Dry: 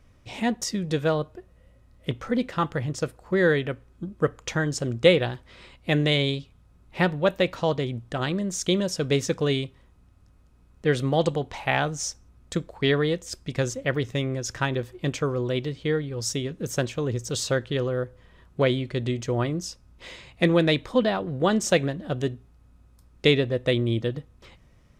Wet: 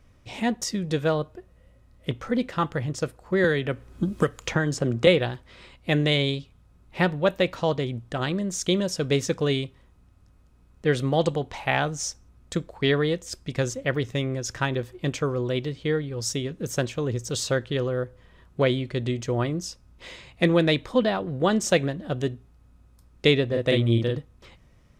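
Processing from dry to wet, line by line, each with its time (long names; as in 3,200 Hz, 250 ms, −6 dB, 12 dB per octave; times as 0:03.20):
0:03.44–0:05.07: multiband upward and downward compressor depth 100%
0:23.47–0:24.18: double-tracking delay 43 ms −2.5 dB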